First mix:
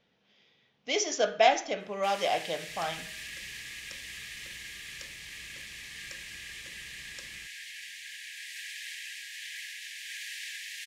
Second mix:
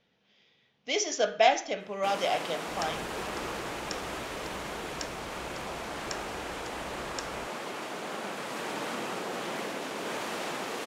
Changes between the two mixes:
first sound: remove brick-wall FIR high-pass 1.6 kHz; second sound +9.5 dB

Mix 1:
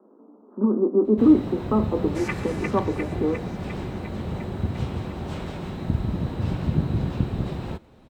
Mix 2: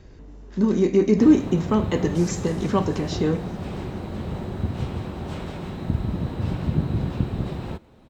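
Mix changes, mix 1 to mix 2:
speech: remove Chebyshev band-pass 210–1300 Hz, order 5; second sound: add high-order bell 1.3 kHz -13.5 dB 2.7 oct

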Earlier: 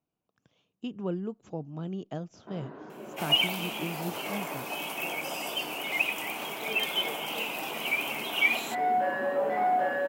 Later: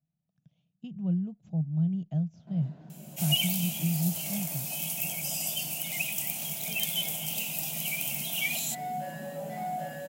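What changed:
speech: add low-pass 2.1 kHz 12 dB/octave; master: add FFT filter 100 Hz 0 dB, 160 Hz +13 dB, 250 Hz -7 dB, 420 Hz -19 dB, 660 Hz -6 dB, 1.1 kHz -20 dB, 7 kHz +11 dB

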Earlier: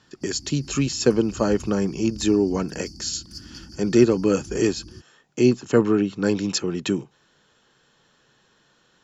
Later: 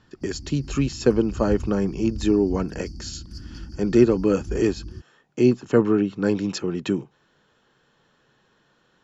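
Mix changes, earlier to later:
background: remove high-pass 160 Hz 6 dB/octave; master: add treble shelf 4 kHz -11.5 dB

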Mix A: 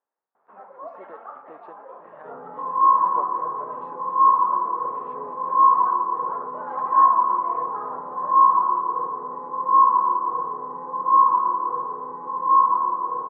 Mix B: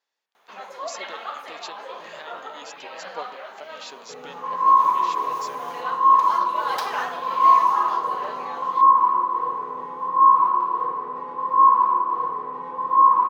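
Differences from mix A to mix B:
first sound +4.5 dB; second sound: entry +1.85 s; master: remove low-pass 1.3 kHz 24 dB/octave

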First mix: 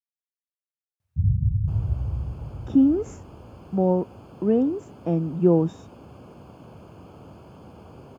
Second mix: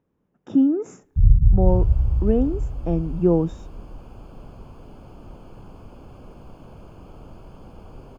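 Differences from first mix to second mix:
speech: entry -2.20 s; master: remove high-pass 79 Hz 24 dB/octave

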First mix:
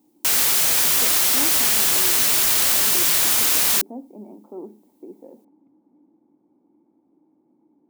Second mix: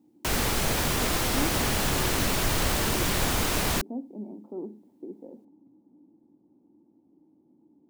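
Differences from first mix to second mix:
speech -6.5 dB; master: add tilt EQ -4 dB/octave

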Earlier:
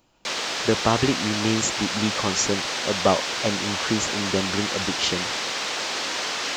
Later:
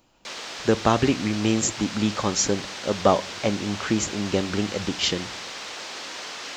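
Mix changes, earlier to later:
speech: send on; background -8.0 dB

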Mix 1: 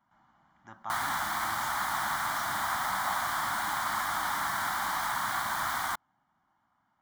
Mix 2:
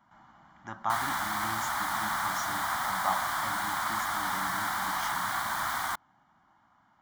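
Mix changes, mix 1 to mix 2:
speech +7.5 dB; reverb: on

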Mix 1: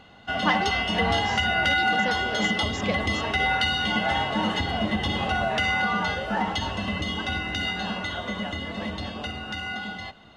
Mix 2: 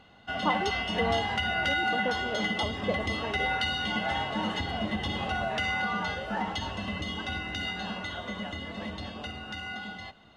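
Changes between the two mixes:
speech: add Savitzky-Golay filter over 65 samples; background -5.5 dB

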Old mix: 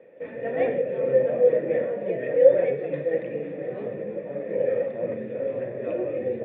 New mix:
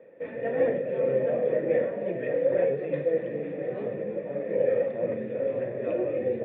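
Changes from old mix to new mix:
speech -7.0 dB; reverb: off

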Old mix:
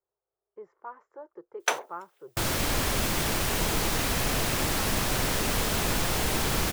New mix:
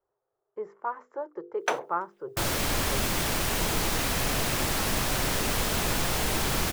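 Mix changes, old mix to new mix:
speech +9.5 dB; first sound: add tilt EQ -3 dB/octave; master: add hum notches 50/100/150/200/250/300/350/400/450/500 Hz

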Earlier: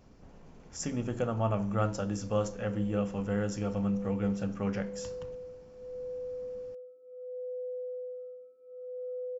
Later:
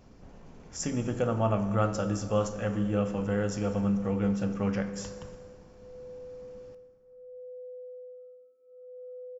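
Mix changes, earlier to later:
background -6.0 dB; reverb: on, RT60 2.3 s

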